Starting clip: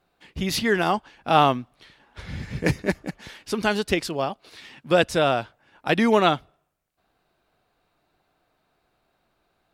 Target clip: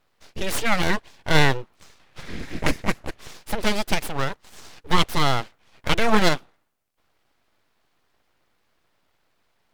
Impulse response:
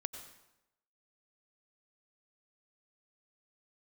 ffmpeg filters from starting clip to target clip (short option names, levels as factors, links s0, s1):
-filter_complex "[0:a]aeval=exprs='abs(val(0))':c=same,asettb=1/sr,asplit=3[s0][s1][s2];[s0]atrim=end=0.834[s3];[s1]atrim=start=0.83:end=1.55,asetpts=PTS-STARTPTS,afade=t=in:d=0.004:c=qsin,afade=t=out:st=0.716:d=0.004:c=qsin,bandreject=f=1300:w=6.5[s4];[s2]atrim=start=1.546[s5];[s3][s4]acrossfade=d=0.004:c1=hsin:c2=qsin[s6];[s6][s5]acrossfade=d=0.004:c1=qsin:c2=hsin,volume=1.41"